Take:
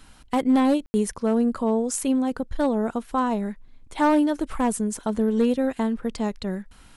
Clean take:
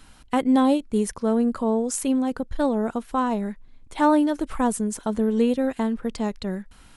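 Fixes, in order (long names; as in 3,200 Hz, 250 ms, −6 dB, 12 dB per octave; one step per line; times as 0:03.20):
clipped peaks rebuilt −13.5 dBFS
ambience match 0:00.86–0:00.94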